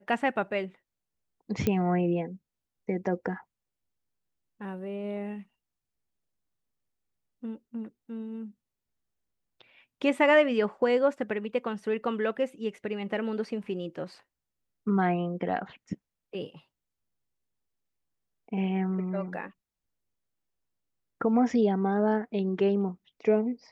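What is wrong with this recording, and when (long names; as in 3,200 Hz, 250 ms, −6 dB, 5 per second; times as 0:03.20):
0:01.67: click −13 dBFS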